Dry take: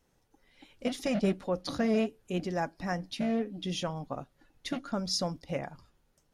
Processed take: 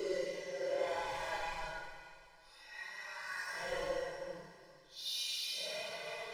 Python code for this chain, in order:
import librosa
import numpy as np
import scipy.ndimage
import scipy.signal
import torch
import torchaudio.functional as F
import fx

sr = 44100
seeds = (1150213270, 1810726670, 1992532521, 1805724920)

y = fx.room_early_taps(x, sr, ms=(38, 49), db=(-3.0, -8.5))
y = fx.filter_lfo_highpass(y, sr, shape='saw_up', hz=1.7, low_hz=380.0, high_hz=1700.0, q=1.4)
y = 10.0 ** (-35.0 / 20.0) * np.tanh(y / 10.0 ** (-35.0 / 20.0))
y = fx.comb_fb(y, sr, f0_hz=54.0, decay_s=0.52, harmonics='all', damping=0.0, mix_pct=80)
y = fx.paulstretch(y, sr, seeds[0], factor=7.7, window_s=0.05, from_s=2.47)
y = fx.hum_notches(y, sr, base_hz=50, count=3)
y = y + 0.89 * np.pad(y, (int(2.0 * sr / 1000.0), 0))[:len(y)]
y = fx.band_widen(y, sr, depth_pct=40)
y = y * librosa.db_to_amplitude(4.5)